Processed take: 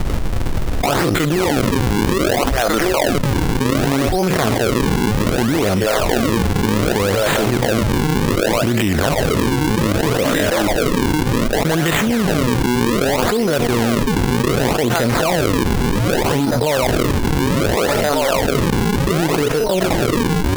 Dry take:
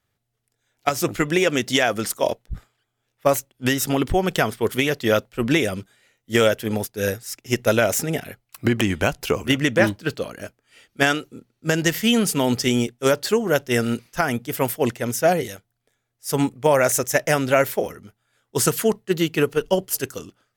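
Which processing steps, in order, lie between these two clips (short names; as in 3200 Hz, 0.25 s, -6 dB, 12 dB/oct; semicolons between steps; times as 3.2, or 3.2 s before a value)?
stepped spectrum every 50 ms; in parallel at +1 dB: limiter -14.5 dBFS, peak gain reduction 9 dB; on the sum: added noise brown -48 dBFS; on a send: narrowing echo 0.749 s, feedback 64%, band-pass 900 Hz, level -10 dB; on the sum: decimation with a swept rate 40×, swing 160% 0.65 Hz; fast leveller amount 100%; gain -6 dB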